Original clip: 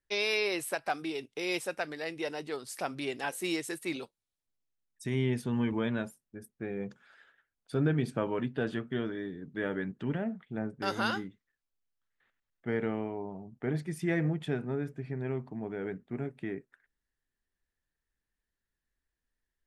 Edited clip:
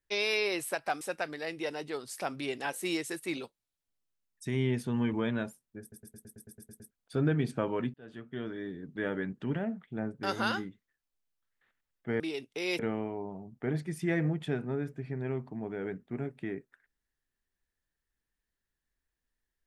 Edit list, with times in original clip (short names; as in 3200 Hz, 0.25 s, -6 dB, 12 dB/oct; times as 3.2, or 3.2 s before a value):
1.01–1.6 move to 12.79
6.4 stutter in place 0.11 s, 10 plays
8.53–9.33 fade in